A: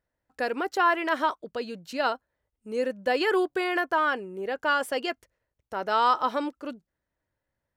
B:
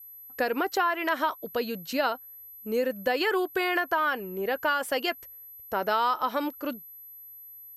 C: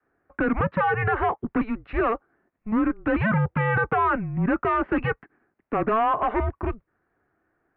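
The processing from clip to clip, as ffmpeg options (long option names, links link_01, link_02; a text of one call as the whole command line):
ffmpeg -i in.wav -af "aeval=exprs='val(0)+0.00355*sin(2*PI*12000*n/s)':channel_layout=same,adynamicequalizer=threshold=0.01:dfrequency=370:dqfactor=0.87:tfrequency=370:tqfactor=0.87:attack=5:release=100:ratio=0.375:range=2:mode=cutabove:tftype=bell,acompressor=threshold=-28dB:ratio=4,volume=5dB" out.wav
ffmpeg -i in.wav -filter_complex "[0:a]asplit=2[link_01][link_02];[link_02]aeval=exprs='0.224*sin(PI/2*4.47*val(0)/0.224)':channel_layout=same,volume=-10dB[link_03];[link_01][link_03]amix=inputs=2:normalize=0,highpass=frequency=290:width_type=q:width=0.5412,highpass=frequency=290:width_type=q:width=1.307,lowpass=frequency=2300:width_type=q:width=0.5176,lowpass=frequency=2300:width_type=q:width=0.7071,lowpass=frequency=2300:width_type=q:width=1.932,afreqshift=-220" out.wav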